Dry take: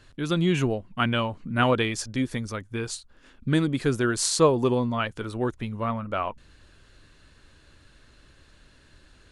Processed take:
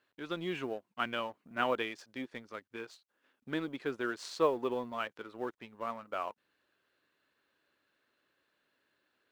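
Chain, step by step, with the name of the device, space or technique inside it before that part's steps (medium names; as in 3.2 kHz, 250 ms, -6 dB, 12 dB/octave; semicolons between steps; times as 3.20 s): phone line with mismatched companding (band-pass 350–3300 Hz; companding laws mixed up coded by A); trim -7.5 dB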